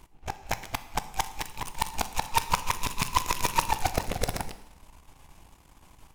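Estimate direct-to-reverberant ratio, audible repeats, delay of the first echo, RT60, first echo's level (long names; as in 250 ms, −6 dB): 11.0 dB, no echo audible, no echo audible, 0.95 s, no echo audible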